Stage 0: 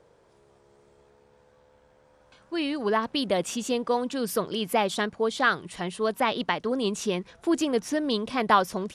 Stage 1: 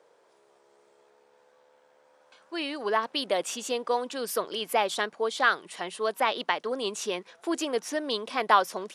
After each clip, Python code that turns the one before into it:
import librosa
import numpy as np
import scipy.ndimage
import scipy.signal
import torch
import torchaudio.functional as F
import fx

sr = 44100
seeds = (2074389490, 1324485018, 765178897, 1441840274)

y = scipy.signal.sosfilt(scipy.signal.butter(2, 430.0, 'highpass', fs=sr, output='sos'), x)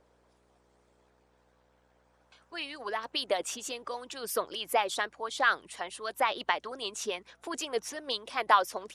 y = fx.add_hum(x, sr, base_hz=60, snr_db=33)
y = fx.hpss(y, sr, part='harmonic', gain_db=-12)
y = y * 10.0 ** (-1.0 / 20.0)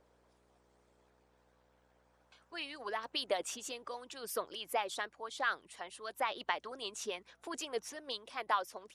y = fx.rider(x, sr, range_db=5, speed_s=2.0)
y = y * 10.0 ** (-8.0 / 20.0)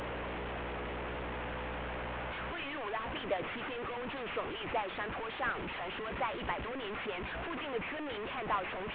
y = fx.delta_mod(x, sr, bps=16000, step_db=-33.0)